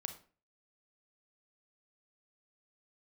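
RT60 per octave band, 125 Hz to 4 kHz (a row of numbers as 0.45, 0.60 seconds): 0.45, 0.45, 0.40, 0.35, 0.35, 0.30 seconds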